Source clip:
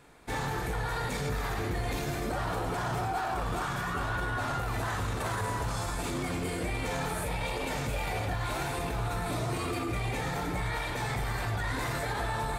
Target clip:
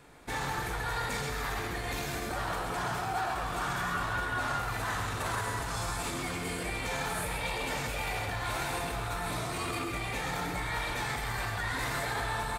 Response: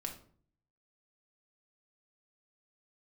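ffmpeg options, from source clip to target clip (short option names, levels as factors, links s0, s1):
-filter_complex "[0:a]acrossover=split=850|1800[s0][s1][s2];[s0]alimiter=level_in=2.99:limit=0.0631:level=0:latency=1,volume=0.335[s3];[s3][s1][s2]amix=inputs=3:normalize=0,aecho=1:1:132:0.473,volume=1.12"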